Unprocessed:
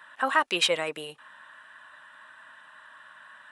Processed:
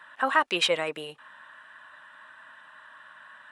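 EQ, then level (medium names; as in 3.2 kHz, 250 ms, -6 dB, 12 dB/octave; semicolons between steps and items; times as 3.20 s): treble shelf 5.8 kHz -7 dB; +1.0 dB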